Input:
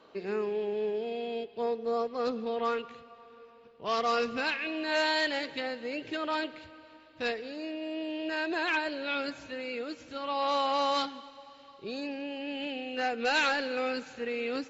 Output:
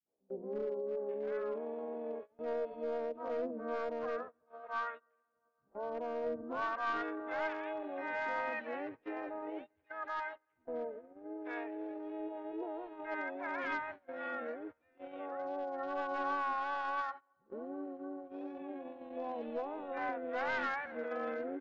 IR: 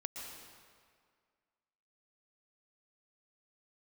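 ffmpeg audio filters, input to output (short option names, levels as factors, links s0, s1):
-filter_complex "[0:a]lowpass=f=1500:w=0.5412,lowpass=f=1500:w=1.3066,lowshelf=f=130:g=-4.5,acrossover=split=190|680[s0][s1][s2];[s1]adelay=60[s3];[s2]adelay=590[s4];[s0][s3][s4]amix=inputs=3:normalize=0,adynamicequalizer=threshold=0.00355:dfrequency=350:dqfactor=3.3:tfrequency=350:tqfactor=3.3:attack=5:release=100:ratio=0.375:range=1.5:mode=cutabove:tftype=bell,atempo=0.68,aresample=11025,aeval=exprs='clip(val(0),-1,0.0316)':c=same,aresample=44100,asplit=2[s5][s6];[s6]asetrate=58866,aresample=44100,atempo=0.749154,volume=0.501[s7];[s5][s7]amix=inputs=2:normalize=0,agate=range=0.0794:threshold=0.00891:ratio=16:detection=peak,volume=0.631"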